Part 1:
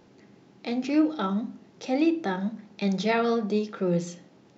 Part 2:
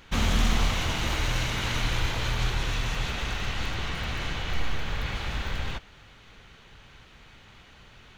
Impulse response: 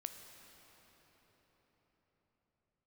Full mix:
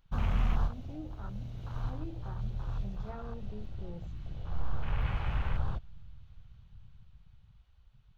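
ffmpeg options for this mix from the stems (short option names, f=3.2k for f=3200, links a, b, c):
-filter_complex "[0:a]volume=-18dB,asplit=2[a][b];[1:a]dynaudnorm=f=280:g=13:m=5dB,equalizer=f=125:t=o:w=1:g=3,equalizer=f=250:t=o:w=1:g=-6,equalizer=f=2k:t=o:w=1:g=-9,equalizer=f=8k:t=o:w=1:g=-9,volume=-5.5dB,asplit=2[c][d];[d]volume=-11.5dB[e];[b]apad=whole_len=360707[f];[c][f]sidechaincompress=threshold=-55dB:ratio=6:attack=22:release=854[g];[2:a]atrim=start_sample=2205[h];[e][h]afir=irnorm=-1:irlink=0[i];[a][g][i]amix=inputs=3:normalize=0,afwtdn=0.00891,equalizer=f=420:t=o:w=1.4:g=-5.5"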